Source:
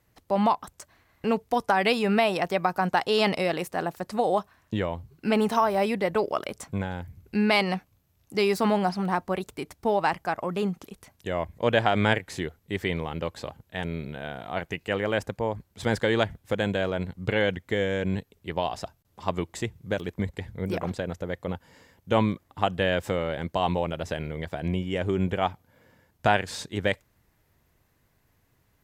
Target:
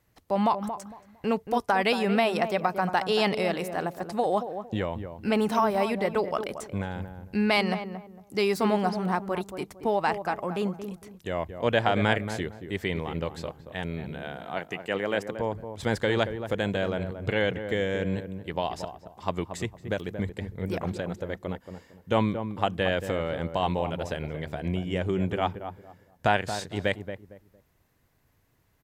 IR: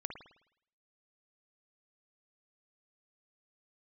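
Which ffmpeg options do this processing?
-filter_complex "[0:a]asettb=1/sr,asplit=3[s0][s1][s2];[s0]atrim=end=14.164[s3];[s1]atrim=start=14.16:end=15.33,asetpts=PTS-STARTPTS,afade=t=in:d=0.004:c=qsin,afade=t=out:st=1.166:d=0.004:c=qsin,highpass=170[s4];[s2]atrim=start=15.326[s5];[s3][s4]acrossfade=d=0.004:c1=hsin:c2=qsin[s6];[s6][s5]acrossfade=d=0.004:c1=qsin:c2=hsin,asplit=2[s7][s8];[s8]adelay=228,lowpass=f=970:p=1,volume=0.398,asplit=2[s9][s10];[s10]adelay=228,lowpass=f=970:p=1,volume=0.29,asplit=2[s11][s12];[s12]adelay=228,lowpass=f=970:p=1,volume=0.29[s13];[s7][s9][s11][s13]amix=inputs=4:normalize=0,volume=0.841"

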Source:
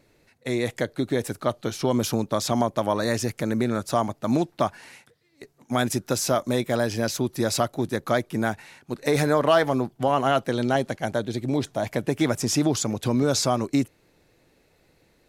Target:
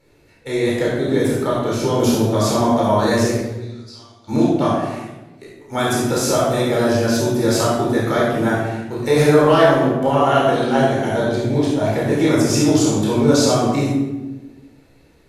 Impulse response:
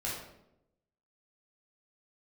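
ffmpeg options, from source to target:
-filter_complex "[0:a]asplit=3[s0][s1][s2];[s0]afade=t=out:st=3.33:d=0.02[s3];[s1]bandpass=f=4700:t=q:w=6.5:csg=0,afade=t=in:st=3.33:d=0.02,afade=t=out:st=4.27:d=0.02[s4];[s2]afade=t=in:st=4.27:d=0.02[s5];[s3][s4][s5]amix=inputs=3:normalize=0[s6];[1:a]atrim=start_sample=2205,asetrate=28224,aresample=44100[s7];[s6][s7]afir=irnorm=-1:irlink=0"

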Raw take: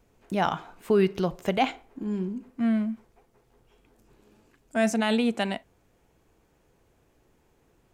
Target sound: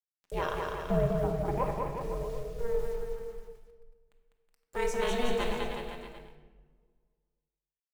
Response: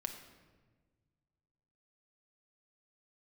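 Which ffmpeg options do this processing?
-filter_complex "[0:a]asettb=1/sr,asplit=3[s0][s1][s2];[s0]atrim=end=0.764[s3];[s1]atrim=start=0.76:end=2.85,asetpts=PTS-STARTPTS,afade=t=in:d=0.004:c=qsin,afade=t=out:st=2.086:d=0.004:c=qsin,lowpass=f=1600:w=0.5412,lowpass=f=1600:w=1.3066[s4];[s2]atrim=start=2.846[s5];[s3][s4]acrossfade=d=0.004:c1=hsin:c2=qsin[s6];[s6][s5]acrossfade=d=0.004:c1=qsin:c2=hsin,acrusher=bits=7:mix=0:aa=0.000001,aeval=exprs='val(0)*sin(2*PI*240*n/s)':c=same,aecho=1:1:200|370|514.5|637.3|741.7:0.631|0.398|0.251|0.158|0.1[s7];[1:a]atrim=start_sample=2205,asetrate=48510,aresample=44100[s8];[s7][s8]afir=irnorm=-1:irlink=0,volume=0.794"

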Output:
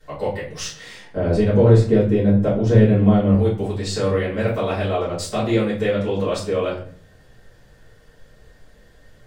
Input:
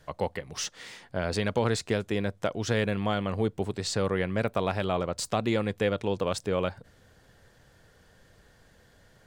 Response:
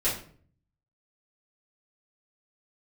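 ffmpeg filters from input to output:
-filter_complex "[0:a]asettb=1/sr,asplit=3[s0][s1][s2];[s0]atrim=end=1.164[s3];[s1]atrim=start=1.16:end=3.34,asetpts=PTS-STARTPTS,afade=t=in:d=0.004:c=qsin,afade=t=out:st=2.176:d=0.004:c=qsin,tiltshelf=f=830:g=9[s4];[s2]atrim=start=3.336[s5];[s3][s4]acrossfade=d=0.004:c1=hsin:c2=qsin[s6];[s6][s5]acrossfade=d=0.004:c1=qsin:c2=hsin[s7];[1:a]atrim=start_sample=2205[s8];[s7][s8]afir=irnorm=-1:irlink=0,volume=0.596"

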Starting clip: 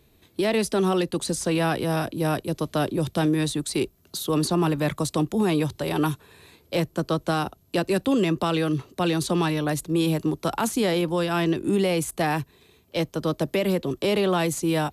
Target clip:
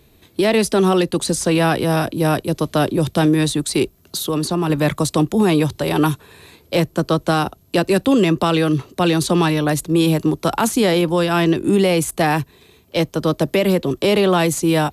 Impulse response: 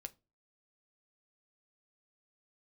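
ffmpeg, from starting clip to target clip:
-filter_complex "[0:a]asettb=1/sr,asplit=3[s0][s1][s2];[s0]atrim=end=4.254[s3];[s1]atrim=start=4.25:end=4.7,asetpts=PTS-STARTPTS,afade=t=in:d=0.004:c=qsin,afade=t=out:st=0.446:d=0.004:c=qsin,acompressor=threshold=0.0251:ratio=1.5[s4];[s2]atrim=start=4.696[s5];[s3][s4]acrossfade=d=0.004:c1=hsin:c2=qsin[s6];[s6][s5]acrossfade=d=0.004:c1=qsin:c2=hsin,volume=2.24"

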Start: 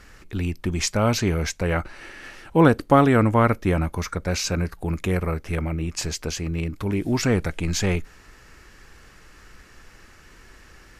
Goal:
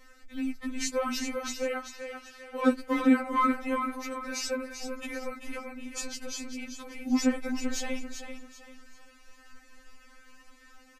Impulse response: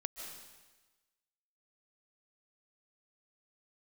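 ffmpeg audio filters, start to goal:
-filter_complex "[0:a]aecho=1:1:389|778|1167|1556:0.398|0.131|0.0434|0.0143,asoftclip=type=hard:threshold=0.447,asettb=1/sr,asplit=3[s0][s1][s2];[s0]atrim=end=1.674[s3];[s1]atrim=start=1.67:end=2.68,asetpts=PTS-STARTPTS,afade=t=in:d=0.004:c=qsin,afade=t=out:st=1.006:d=0.004:c=qsin,lowshelf=f=220:g=-9[s4];[s2]atrim=start=2.676[s5];[s3][s4]acrossfade=d=0.004:c1=hsin:c2=qsin[s6];[s6][s5]acrossfade=d=0.004:c1=qsin:c2=hsin,afftfilt=real='re*3.46*eq(mod(b,12),0)':imag='im*3.46*eq(mod(b,12),0)':win_size=2048:overlap=0.75,volume=0.562"

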